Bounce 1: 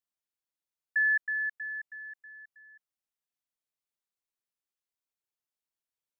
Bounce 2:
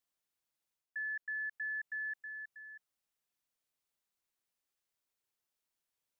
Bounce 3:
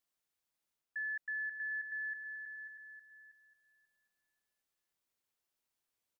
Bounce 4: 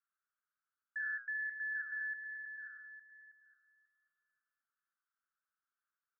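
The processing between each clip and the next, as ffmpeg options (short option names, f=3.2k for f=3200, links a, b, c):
-af "areverse,acompressor=threshold=-37dB:ratio=6,areverse,alimiter=level_in=15dB:limit=-24dB:level=0:latency=1,volume=-15dB,volume=4dB"
-filter_complex "[0:a]asplit=2[a][b];[b]adelay=540,lowpass=f=1.5k:p=1,volume=-4dB,asplit=2[c][d];[d]adelay=540,lowpass=f=1.5k:p=1,volume=0.29,asplit=2[e][f];[f]adelay=540,lowpass=f=1.5k:p=1,volume=0.29,asplit=2[g][h];[h]adelay=540,lowpass=f=1.5k:p=1,volume=0.29[i];[a][c][e][g][i]amix=inputs=5:normalize=0"
-af "flanger=delay=3.4:depth=4.9:regen=-84:speed=1.2:shape=sinusoidal,asuperpass=centerf=1400:order=4:qfactor=3.6,volume=12.5dB"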